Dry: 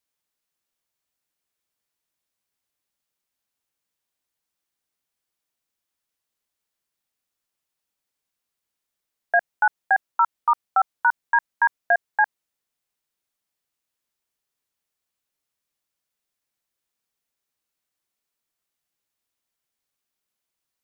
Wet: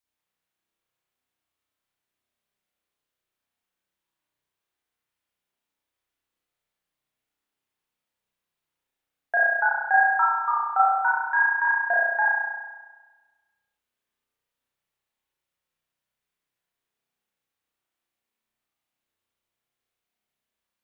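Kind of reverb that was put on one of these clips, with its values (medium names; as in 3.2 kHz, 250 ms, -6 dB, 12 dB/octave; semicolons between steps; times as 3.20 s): spring tank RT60 1.3 s, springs 32 ms, chirp 25 ms, DRR -6.5 dB; trim -5.5 dB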